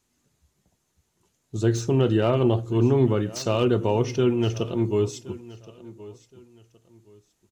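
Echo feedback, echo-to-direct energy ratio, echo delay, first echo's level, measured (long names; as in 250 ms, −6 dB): 28%, −18.5 dB, 1,071 ms, −19.0 dB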